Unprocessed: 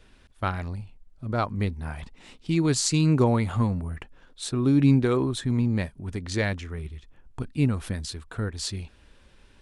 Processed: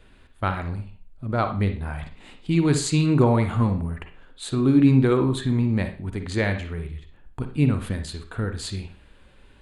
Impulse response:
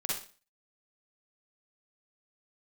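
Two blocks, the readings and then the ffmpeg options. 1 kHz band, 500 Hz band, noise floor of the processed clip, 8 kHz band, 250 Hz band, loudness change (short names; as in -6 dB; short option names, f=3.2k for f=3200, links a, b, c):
+3.5 dB, +3.5 dB, -52 dBFS, -2.5 dB, +3.0 dB, +2.5 dB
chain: -filter_complex "[0:a]equalizer=f=5.6k:t=o:w=0.26:g=-12,asplit=2[a][b];[1:a]atrim=start_sample=2205,lowpass=4.2k[c];[b][c]afir=irnorm=-1:irlink=0,volume=-7.5dB[d];[a][d]amix=inputs=2:normalize=0"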